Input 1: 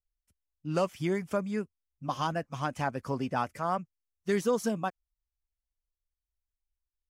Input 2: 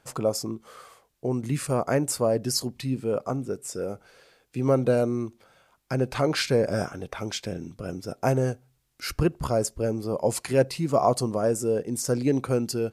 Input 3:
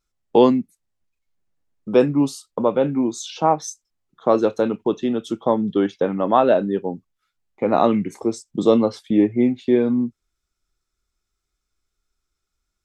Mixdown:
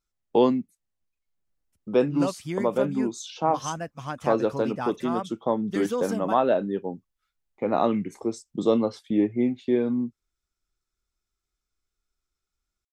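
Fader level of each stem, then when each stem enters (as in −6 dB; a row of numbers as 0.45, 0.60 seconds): −1.0 dB, muted, −6.0 dB; 1.45 s, muted, 0.00 s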